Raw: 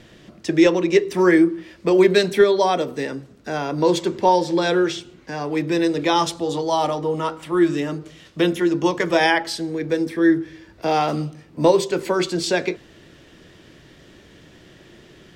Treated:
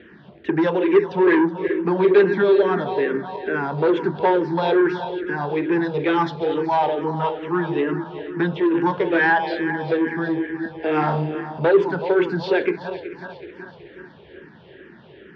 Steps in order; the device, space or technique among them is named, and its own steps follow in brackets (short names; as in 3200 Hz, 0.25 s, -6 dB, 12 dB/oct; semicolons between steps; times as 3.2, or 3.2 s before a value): regenerating reverse delay 0.187 s, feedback 74%, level -12.5 dB; LPF 5600 Hz 12 dB/oct; tone controls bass +6 dB, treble +2 dB; barber-pole phaser into a guitar amplifier (endless phaser -2.3 Hz; soft clip -16 dBFS, distortion -11 dB; speaker cabinet 94–3500 Hz, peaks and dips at 110 Hz -8 dB, 410 Hz +9 dB, 880 Hz +7 dB, 1600 Hz +9 dB); 10.88–11.6 flutter echo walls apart 5.6 m, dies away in 0.32 s